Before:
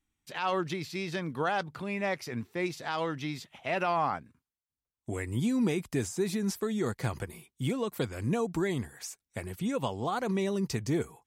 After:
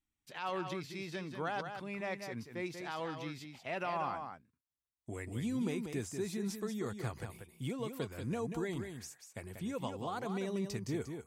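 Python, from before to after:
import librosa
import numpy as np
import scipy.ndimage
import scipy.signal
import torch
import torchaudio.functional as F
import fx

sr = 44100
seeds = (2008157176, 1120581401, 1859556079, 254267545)

y = x + 10.0 ** (-7.0 / 20.0) * np.pad(x, (int(188 * sr / 1000.0), 0))[:len(x)]
y = F.gain(torch.from_numpy(y), -8.0).numpy()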